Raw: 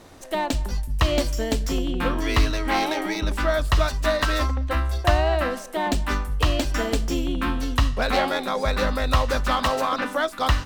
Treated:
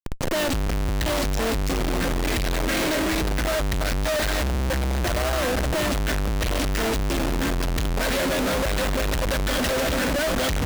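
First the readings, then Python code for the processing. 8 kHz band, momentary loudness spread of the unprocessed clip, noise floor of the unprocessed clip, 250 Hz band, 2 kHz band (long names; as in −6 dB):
+5.5 dB, 4 LU, −37 dBFS, +1.0 dB, +0.5 dB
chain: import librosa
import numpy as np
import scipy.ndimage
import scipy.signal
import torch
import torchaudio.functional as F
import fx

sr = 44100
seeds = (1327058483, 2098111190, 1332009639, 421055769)

y = scipy.signal.sosfilt(scipy.signal.cheby1(3, 1.0, [650.0, 1500.0], 'bandstop', fs=sr, output='sos'), x)
y = fx.high_shelf(y, sr, hz=9200.0, db=-5.0)
y = fx.echo_feedback(y, sr, ms=750, feedback_pct=49, wet_db=-14.5)
y = fx.rider(y, sr, range_db=4, speed_s=2.0)
y = fx.schmitt(y, sr, flips_db=-37.0)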